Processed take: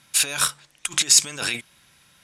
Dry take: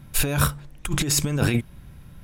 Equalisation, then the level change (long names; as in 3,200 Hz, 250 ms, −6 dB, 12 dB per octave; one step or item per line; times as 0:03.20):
meter weighting curve ITU-R 468
−3.0 dB